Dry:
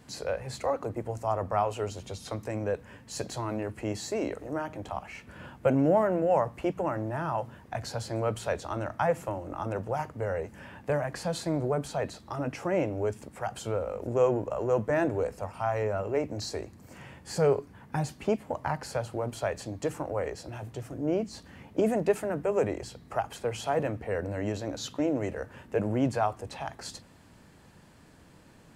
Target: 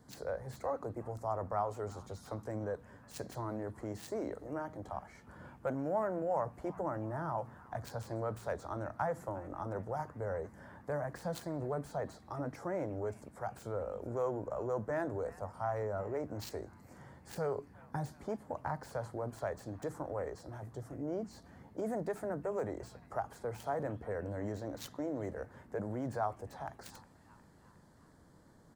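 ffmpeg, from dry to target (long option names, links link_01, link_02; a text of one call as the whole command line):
ffmpeg -i in.wav -filter_complex "[0:a]acrossover=split=740|2400[link_01][link_02][link_03];[link_01]alimiter=level_in=1dB:limit=-24dB:level=0:latency=1,volume=-1dB[link_04];[link_02]asplit=6[link_05][link_06][link_07][link_08][link_09][link_10];[link_06]adelay=360,afreqshift=68,volume=-18dB[link_11];[link_07]adelay=720,afreqshift=136,volume=-22.4dB[link_12];[link_08]adelay=1080,afreqshift=204,volume=-26.9dB[link_13];[link_09]adelay=1440,afreqshift=272,volume=-31.3dB[link_14];[link_10]adelay=1800,afreqshift=340,volume=-35.7dB[link_15];[link_05][link_11][link_12][link_13][link_14][link_15]amix=inputs=6:normalize=0[link_16];[link_03]aeval=exprs='0.0631*(cos(1*acos(clip(val(0)/0.0631,-1,1)))-cos(1*PI/2))+0.00355*(cos(3*acos(clip(val(0)/0.0631,-1,1)))-cos(3*PI/2))+0.0141*(cos(7*acos(clip(val(0)/0.0631,-1,1)))-cos(7*PI/2))':channel_layout=same[link_17];[link_04][link_16][link_17]amix=inputs=3:normalize=0,volume=-6dB" out.wav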